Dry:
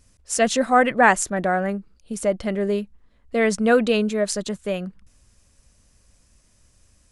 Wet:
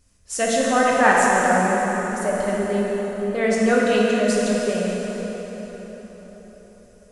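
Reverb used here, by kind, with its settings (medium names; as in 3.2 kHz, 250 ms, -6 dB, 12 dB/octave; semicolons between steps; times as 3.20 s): plate-style reverb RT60 4.9 s, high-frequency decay 0.7×, DRR -5 dB; trim -4.5 dB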